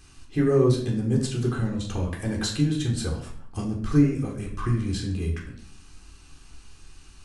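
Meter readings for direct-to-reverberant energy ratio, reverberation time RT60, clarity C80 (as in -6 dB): -1.0 dB, 0.60 s, 10.0 dB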